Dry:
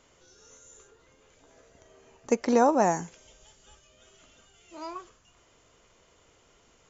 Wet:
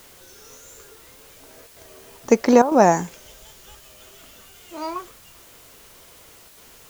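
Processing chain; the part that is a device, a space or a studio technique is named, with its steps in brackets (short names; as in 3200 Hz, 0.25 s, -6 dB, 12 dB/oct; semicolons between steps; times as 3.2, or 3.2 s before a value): worn cassette (LPF 6800 Hz; wow and flutter; level dips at 1.67/2.62/6.48, 93 ms -12 dB; white noise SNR 25 dB); gain +9 dB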